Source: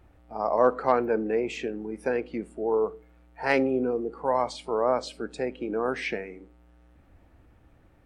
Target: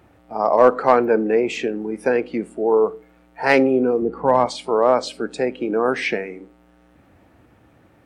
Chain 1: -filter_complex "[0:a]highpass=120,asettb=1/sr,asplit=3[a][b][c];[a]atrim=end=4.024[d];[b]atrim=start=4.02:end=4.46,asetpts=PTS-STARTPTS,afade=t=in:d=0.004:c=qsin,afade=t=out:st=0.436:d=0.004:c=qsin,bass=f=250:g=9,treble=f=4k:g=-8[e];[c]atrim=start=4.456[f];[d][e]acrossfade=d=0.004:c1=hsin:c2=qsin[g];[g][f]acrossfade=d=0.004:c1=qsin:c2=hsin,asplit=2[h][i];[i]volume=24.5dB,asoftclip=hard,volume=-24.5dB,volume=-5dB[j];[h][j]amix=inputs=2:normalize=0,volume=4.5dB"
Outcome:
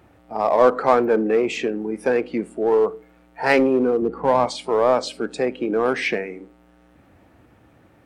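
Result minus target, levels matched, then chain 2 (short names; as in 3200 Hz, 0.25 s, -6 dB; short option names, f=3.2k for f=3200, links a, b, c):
overloaded stage: distortion +12 dB
-filter_complex "[0:a]highpass=120,asettb=1/sr,asplit=3[a][b][c];[a]atrim=end=4.024[d];[b]atrim=start=4.02:end=4.46,asetpts=PTS-STARTPTS,afade=t=in:d=0.004:c=qsin,afade=t=out:st=0.436:d=0.004:c=qsin,bass=f=250:g=9,treble=f=4k:g=-8[e];[c]atrim=start=4.456[f];[d][e]acrossfade=d=0.004:c1=hsin:c2=qsin[g];[g][f]acrossfade=d=0.004:c1=qsin:c2=hsin,asplit=2[h][i];[i]volume=14dB,asoftclip=hard,volume=-14dB,volume=-5dB[j];[h][j]amix=inputs=2:normalize=0,volume=4.5dB"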